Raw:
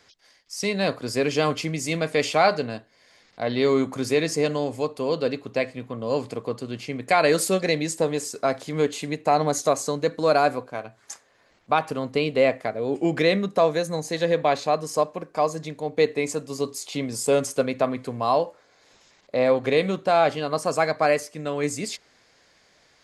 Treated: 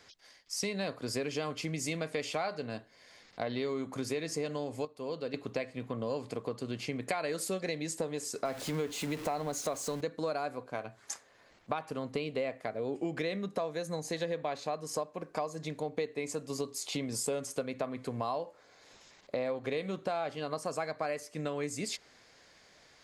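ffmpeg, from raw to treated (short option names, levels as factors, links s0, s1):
-filter_complex "[0:a]asettb=1/sr,asplit=3[s0][s1][s2];[s0]atrim=end=8.454[s3];[s1]atrim=start=8.45:end=10.01,asetpts=PTS-STARTPTS,afade=t=in:d=0.004:c=qsin,afade=t=out:st=1.556:d=0.004:c=qsin,aeval=exprs='val(0)+0.5*0.0299*sgn(val(0))':c=same[s4];[s2]atrim=start=10.006[s5];[s3][s4]acrossfade=d=0.004:c1=hsin:c2=qsin[s6];[s6][s5]acrossfade=d=0.004:c1=qsin:c2=hsin,asplit=3[s7][s8][s9];[s7]atrim=end=4.852[s10];[s8]atrim=start=4.848:end=5.342,asetpts=PTS-STARTPTS,volume=0.299[s11];[s9]atrim=start=5.338[s12];[s10][s11]acrossfade=d=0.004:c1=hsin:c2=hsin[s13];[s13][s12]acrossfade=d=0.004:c1=hsin:c2=hsin,acompressor=threshold=0.0282:ratio=6,volume=0.891"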